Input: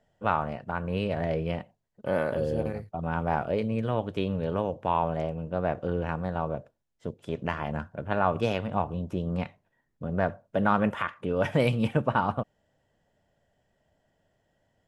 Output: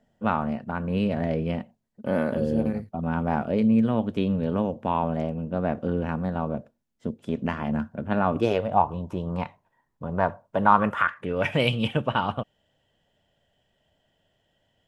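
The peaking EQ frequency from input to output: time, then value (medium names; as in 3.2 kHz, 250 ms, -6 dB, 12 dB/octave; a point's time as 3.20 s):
peaking EQ +12.5 dB 0.55 oct
8.31 s 230 Hz
8.85 s 970 Hz
10.71 s 970 Hz
11.69 s 3.1 kHz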